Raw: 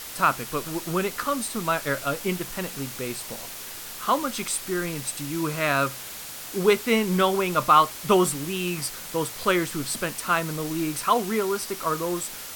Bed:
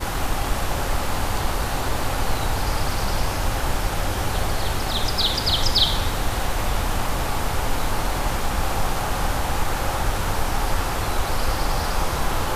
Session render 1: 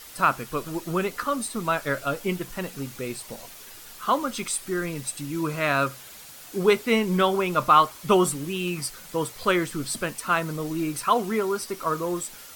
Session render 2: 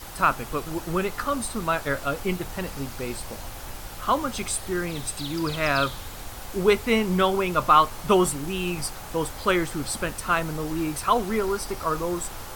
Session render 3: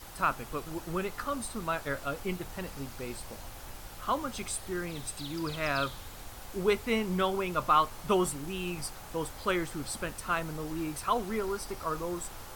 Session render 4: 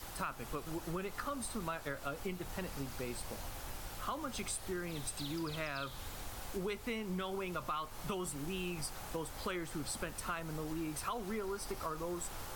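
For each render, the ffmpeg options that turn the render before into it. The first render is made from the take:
-af "afftdn=nr=8:nf=-38"
-filter_complex "[1:a]volume=-15.5dB[a];[0:a][a]amix=inputs=2:normalize=0"
-af "volume=-7.5dB"
-filter_complex "[0:a]acrossover=split=160|1500|5900[a][b][c][d];[b]alimiter=level_in=0.5dB:limit=-24dB:level=0:latency=1,volume=-0.5dB[e];[a][e][c][d]amix=inputs=4:normalize=0,acompressor=threshold=-36dB:ratio=6"

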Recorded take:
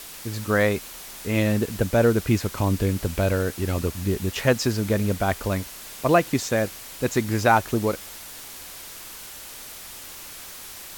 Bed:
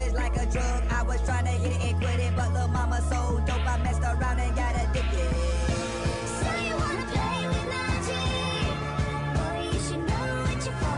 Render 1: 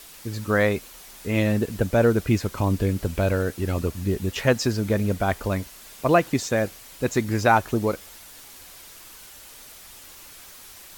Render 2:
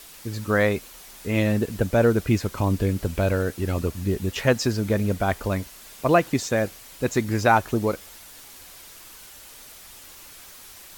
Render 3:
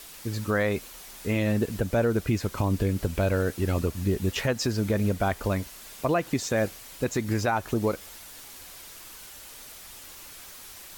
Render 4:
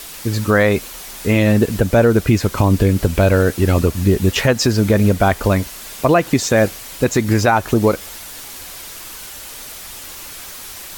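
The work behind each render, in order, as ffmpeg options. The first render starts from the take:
-af "afftdn=nr=6:nf=-40"
-af anull
-af "alimiter=limit=-15dB:level=0:latency=1:release=152"
-af "volume=11.5dB"

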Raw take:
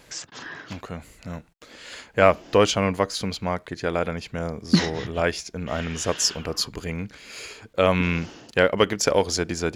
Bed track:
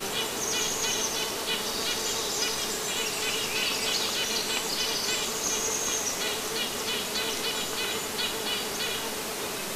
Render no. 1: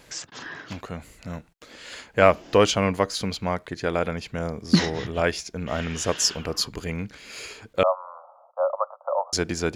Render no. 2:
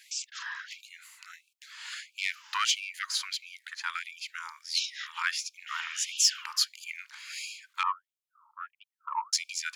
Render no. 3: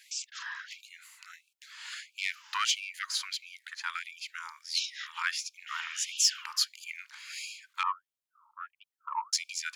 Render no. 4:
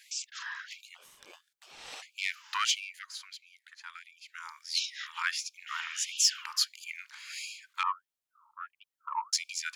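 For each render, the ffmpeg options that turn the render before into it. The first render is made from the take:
-filter_complex "[0:a]asettb=1/sr,asplit=3[a][b][c];[a]atrim=end=7.834[d];[b]atrim=start=7.83:end=9.33,asetpts=PTS-STARTPTS,afade=t=in:d=0.004:c=qsin,afade=t=out:st=1.496:d=0.004:c=qsin,asuperpass=centerf=840:order=20:qfactor=1.1[e];[c]atrim=start=9.326[f];[d][e]acrossfade=d=0.004:c1=hsin:c2=qsin[g];[g][f]acrossfade=d=0.004:c1=qsin:c2=hsin"
-af "asoftclip=type=tanh:threshold=-10.5dB,afftfilt=real='re*gte(b*sr/1024,840*pow(2300/840,0.5+0.5*sin(2*PI*1.5*pts/sr)))':imag='im*gte(b*sr/1024,840*pow(2300/840,0.5+0.5*sin(2*PI*1.5*pts/sr)))':win_size=1024:overlap=0.75"
-af "volume=-1.5dB"
-filter_complex "[0:a]asplit=3[a][b][c];[a]afade=t=out:st=0.94:d=0.02[d];[b]aeval=exprs='val(0)*sin(2*PI*940*n/s)':c=same,afade=t=in:st=0.94:d=0.02,afade=t=out:st=2.01:d=0.02[e];[c]afade=t=in:st=2.01:d=0.02[f];[d][e][f]amix=inputs=3:normalize=0,asplit=3[g][h][i];[g]atrim=end=3.05,asetpts=PTS-STARTPTS,afade=t=out:st=2.78:d=0.27:silence=0.298538[j];[h]atrim=start=3.05:end=4.24,asetpts=PTS-STARTPTS,volume=-10.5dB[k];[i]atrim=start=4.24,asetpts=PTS-STARTPTS,afade=t=in:d=0.27:silence=0.298538[l];[j][k][l]concat=n=3:v=0:a=1"

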